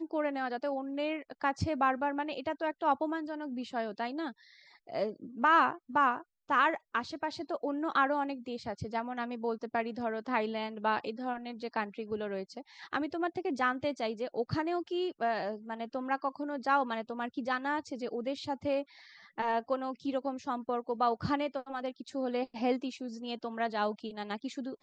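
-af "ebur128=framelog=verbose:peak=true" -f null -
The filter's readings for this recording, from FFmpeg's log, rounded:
Integrated loudness:
  I:         -33.6 LUFS
  Threshold: -43.7 LUFS
Loudness range:
  LRA:         4.8 LU
  Threshold: -53.6 LUFS
  LRA low:   -35.4 LUFS
  LRA high:  -30.6 LUFS
True peak:
  Peak:      -14.5 dBFS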